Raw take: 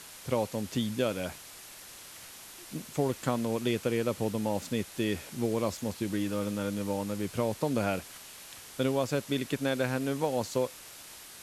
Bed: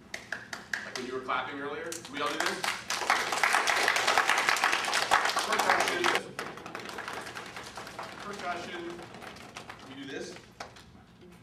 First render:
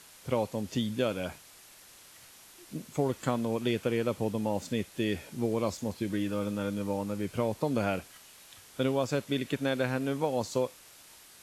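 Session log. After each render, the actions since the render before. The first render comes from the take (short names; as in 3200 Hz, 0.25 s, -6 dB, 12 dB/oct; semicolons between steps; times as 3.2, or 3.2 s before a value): noise print and reduce 6 dB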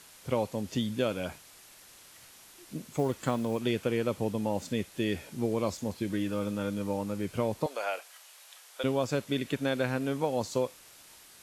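2.94–3.59 short-mantissa float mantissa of 4-bit; 7.66–8.84 HPF 540 Hz 24 dB/oct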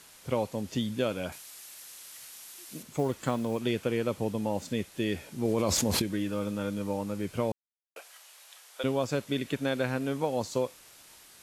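1.32–2.83 tilt +2.5 dB/oct; 5.45–6.02 fast leveller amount 100%; 7.52–7.96 mute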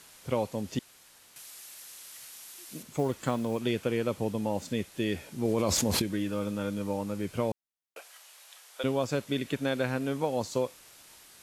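0.79–1.36 room tone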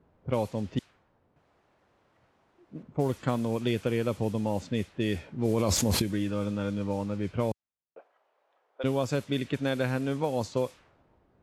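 low-pass opened by the level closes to 510 Hz, open at -25 dBFS; bell 79 Hz +6 dB 2 oct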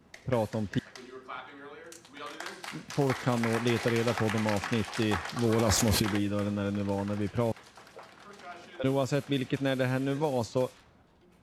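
add bed -10 dB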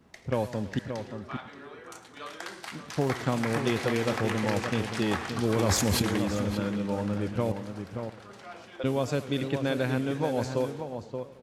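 outdoor echo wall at 99 m, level -7 dB; warbling echo 0.111 s, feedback 65%, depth 175 cents, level -16 dB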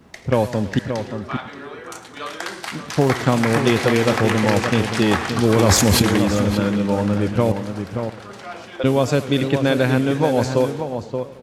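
gain +10.5 dB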